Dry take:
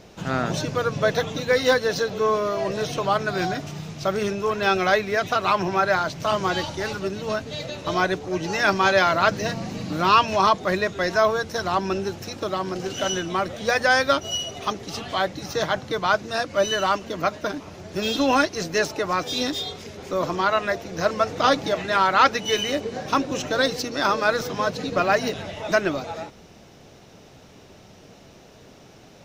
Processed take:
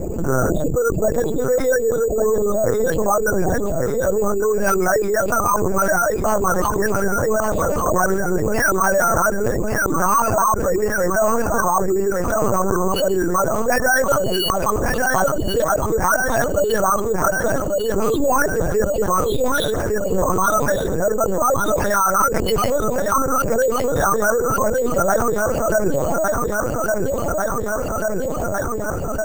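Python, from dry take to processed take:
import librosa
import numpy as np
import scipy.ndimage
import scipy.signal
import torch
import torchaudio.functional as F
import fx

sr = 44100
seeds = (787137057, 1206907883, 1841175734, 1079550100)

p1 = fx.envelope_sharpen(x, sr, power=3.0)
p2 = scipy.signal.sosfilt(scipy.signal.butter(2, 160.0, 'highpass', fs=sr, output='sos'), p1)
p3 = fx.notch(p2, sr, hz=3100.0, q=5.8)
p4 = fx.rider(p3, sr, range_db=4, speed_s=2.0)
p5 = p4 + fx.echo_feedback(p4, sr, ms=1149, feedback_pct=56, wet_db=-9.0, dry=0)
p6 = fx.lpc_vocoder(p5, sr, seeds[0], excitation='pitch_kept', order=8)
p7 = np.repeat(scipy.signal.resample_poly(p6, 1, 6), 6)[:len(p6)]
p8 = fx.env_flatten(p7, sr, amount_pct=70)
y = p8 * 10.0 ** (-1.5 / 20.0)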